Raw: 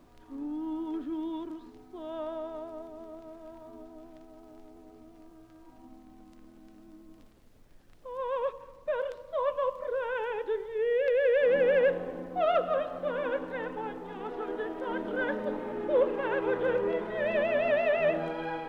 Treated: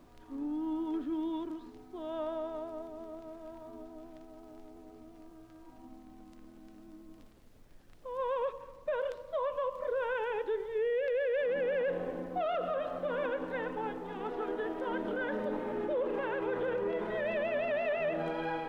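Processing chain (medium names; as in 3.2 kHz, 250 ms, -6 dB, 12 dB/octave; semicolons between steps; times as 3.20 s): peak limiter -26 dBFS, peak gain reduction 10.5 dB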